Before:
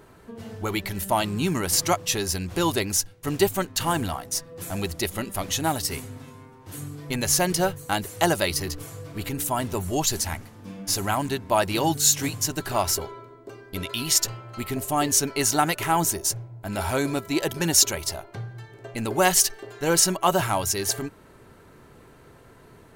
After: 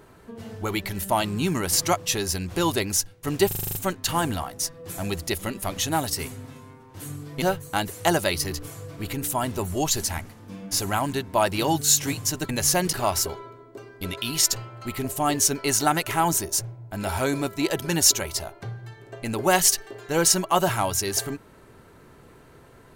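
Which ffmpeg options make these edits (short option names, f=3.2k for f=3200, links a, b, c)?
-filter_complex "[0:a]asplit=11[a][b][c][d][e][f][g][h][i][j][k];[a]atrim=end=3.512[l];[b]atrim=start=3.468:end=3.512[m];[c]atrim=start=3.468:end=3.512[n];[d]atrim=start=3.468:end=3.512[o];[e]atrim=start=3.468:end=3.512[p];[f]atrim=start=3.468:end=3.512[q];[g]atrim=start=3.468:end=3.512[r];[h]atrim=start=3.468:end=7.142[s];[i]atrim=start=7.578:end=12.652[t];[j]atrim=start=7.138:end=7.582[u];[k]atrim=start=12.648[v];[l][m]acrossfade=d=0.004:c1=hsin:c2=hsin[w];[w][n]acrossfade=d=0.004:c1=hsin:c2=hsin[x];[x][o]acrossfade=d=0.004:c1=hsin:c2=hsin[y];[y][p]acrossfade=d=0.004:c1=hsin:c2=hsin[z];[z][q]acrossfade=d=0.004:c1=hsin:c2=hsin[aa];[aa][r]acrossfade=d=0.004:c1=hsin:c2=hsin[ab];[ab][s]acrossfade=d=0.004:c1=hsin:c2=hsin[ac];[ac][t]acrossfade=d=0.004:c1=hsin:c2=hsin[ad];[ad][u]acrossfade=d=0.004:c1=hsin:c2=hsin[ae];[ae][v]acrossfade=d=0.004:c1=hsin:c2=hsin"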